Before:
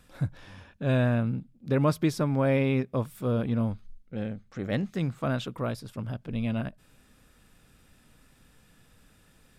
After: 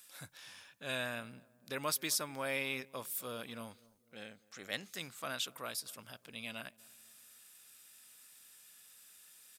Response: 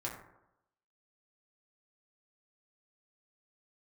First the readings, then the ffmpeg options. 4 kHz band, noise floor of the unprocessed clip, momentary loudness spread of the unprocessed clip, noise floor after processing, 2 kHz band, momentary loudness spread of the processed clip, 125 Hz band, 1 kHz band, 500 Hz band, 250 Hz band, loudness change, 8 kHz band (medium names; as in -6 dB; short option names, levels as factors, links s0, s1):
+3.0 dB, -61 dBFS, 12 LU, -70 dBFS, -2.5 dB, 21 LU, -26.0 dB, -8.0 dB, -14.0 dB, -20.5 dB, -10.5 dB, +9.0 dB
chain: -filter_complex "[0:a]aderivative,asplit=2[s0][s1];[s1]adelay=252,lowpass=f=1000:p=1,volume=0.0794,asplit=2[s2][s3];[s3]adelay=252,lowpass=f=1000:p=1,volume=0.5,asplit=2[s4][s5];[s5]adelay=252,lowpass=f=1000:p=1,volume=0.5[s6];[s0][s2][s4][s6]amix=inputs=4:normalize=0,volume=2.66"